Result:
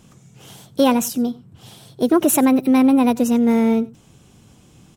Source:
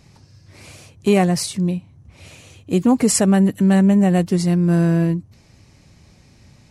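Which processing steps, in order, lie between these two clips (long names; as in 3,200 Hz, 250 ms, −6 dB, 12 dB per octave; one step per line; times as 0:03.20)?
wrong playback speed 33 rpm record played at 45 rpm
slap from a distant wall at 16 metres, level −21 dB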